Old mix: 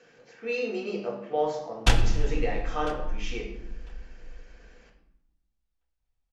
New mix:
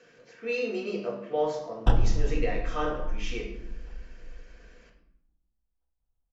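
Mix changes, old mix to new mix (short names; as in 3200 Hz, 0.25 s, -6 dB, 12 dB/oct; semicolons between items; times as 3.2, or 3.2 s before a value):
speech: add Butterworth band-stop 810 Hz, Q 6.1; background: add running mean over 20 samples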